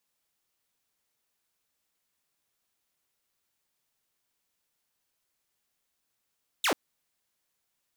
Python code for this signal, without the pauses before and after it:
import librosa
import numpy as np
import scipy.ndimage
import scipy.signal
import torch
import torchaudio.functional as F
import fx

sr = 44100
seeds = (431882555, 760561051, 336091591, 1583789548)

y = fx.laser_zap(sr, level_db=-20.5, start_hz=4100.0, end_hz=240.0, length_s=0.09, wave='saw')